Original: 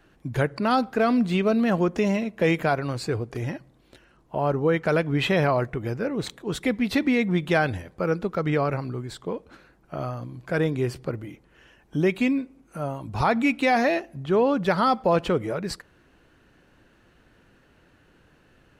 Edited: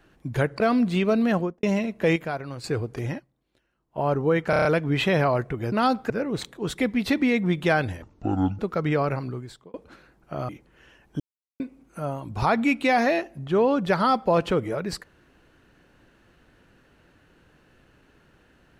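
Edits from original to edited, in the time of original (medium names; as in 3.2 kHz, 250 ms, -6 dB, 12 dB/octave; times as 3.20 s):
0.60–0.98 s: move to 5.95 s
1.69–2.01 s: studio fade out
2.54–3.02 s: gain -7 dB
3.55–4.37 s: dip -16.5 dB, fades 0.33 s exponential
4.88 s: stutter 0.03 s, 6 plays
7.87–8.20 s: speed 58%
8.89–9.35 s: fade out
10.10–11.27 s: delete
11.98–12.38 s: mute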